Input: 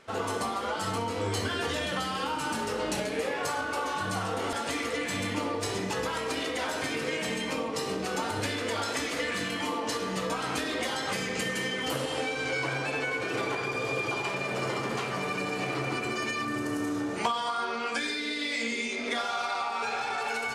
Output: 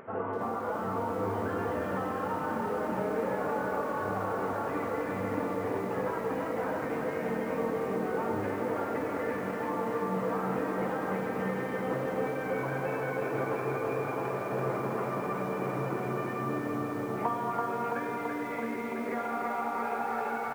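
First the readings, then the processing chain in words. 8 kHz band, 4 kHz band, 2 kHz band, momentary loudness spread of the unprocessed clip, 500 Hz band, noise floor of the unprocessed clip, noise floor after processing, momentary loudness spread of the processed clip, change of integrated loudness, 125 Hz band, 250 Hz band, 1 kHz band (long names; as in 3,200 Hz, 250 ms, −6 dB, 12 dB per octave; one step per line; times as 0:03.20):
below −15 dB, −21.0 dB, −7.0 dB, 2 LU, +1.5 dB, −34 dBFS, −35 dBFS, 2 LU, −2.0 dB, 0.0 dB, +0.5 dB, −0.5 dB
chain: high-pass filter 110 Hz 12 dB per octave
parametric band 300 Hz −2.5 dB 0.37 octaves
upward compression, threshold −38 dBFS
Gaussian smoothing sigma 5.5 samples
repeating echo 145 ms, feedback 47%, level −22 dB
feedback echo at a low word length 333 ms, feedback 80%, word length 9 bits, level −4.5 dB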